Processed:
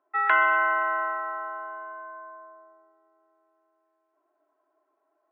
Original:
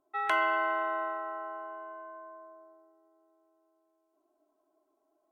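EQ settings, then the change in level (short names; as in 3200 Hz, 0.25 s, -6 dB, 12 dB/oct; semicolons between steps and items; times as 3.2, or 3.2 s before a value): speaker cabinet 360–3100 Hz, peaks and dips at 490 Hz +4 dB, 960 Hz +6 dB, 1400 Hz +8 dB, 2400 Hz +3 dB; bell 1800 Hz +10.5 dB 0.33 oct; 0.0 dB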